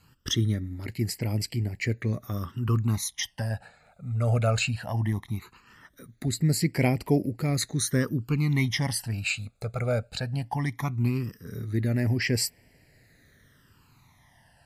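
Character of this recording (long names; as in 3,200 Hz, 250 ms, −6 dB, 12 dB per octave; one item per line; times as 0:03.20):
phaser sweep stages 12, 0.18 Hz, lowest notch 310–1,200 Hz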